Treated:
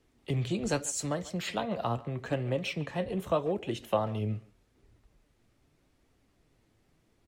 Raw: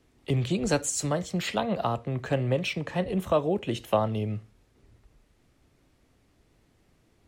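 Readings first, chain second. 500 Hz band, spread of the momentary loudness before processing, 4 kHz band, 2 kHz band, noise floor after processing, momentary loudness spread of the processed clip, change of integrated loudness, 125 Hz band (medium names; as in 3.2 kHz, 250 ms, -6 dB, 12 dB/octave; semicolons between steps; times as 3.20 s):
-4.5 dB, 4 LU, -4.5 dB, -4.5 dB, -70 dBFS, 4 LU, -4.5 dB, -4.5 dB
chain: speakerphone echo 140 ms, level -18 dB; flange 0.82 Hz, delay 2 ms, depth 7.6 ms, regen +68%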